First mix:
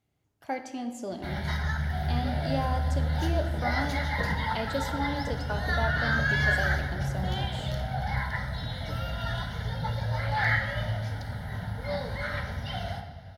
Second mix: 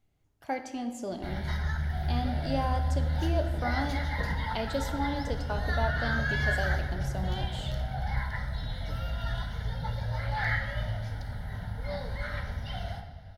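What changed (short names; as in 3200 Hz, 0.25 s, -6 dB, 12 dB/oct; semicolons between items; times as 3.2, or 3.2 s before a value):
background -4.5 dB; master: remove HPF 84 Hz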